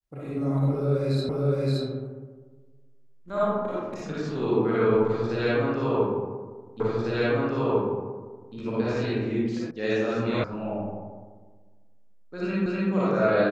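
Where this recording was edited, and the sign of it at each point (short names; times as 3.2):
1.29 repeat of the last 0.57 s
6.8 repeat of the last 1.75 s
9.71 sound cut off
10.44 sound cut off
12.66 repeat of the last 0.25 s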